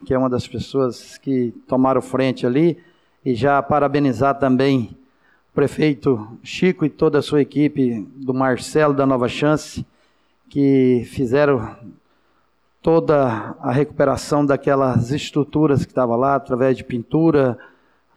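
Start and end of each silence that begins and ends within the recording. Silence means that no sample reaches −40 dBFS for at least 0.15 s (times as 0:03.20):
0:02.80–0:03.25
0:04.95–0:05.55
0:09.84–0:10.51
0:11.95–0:12.84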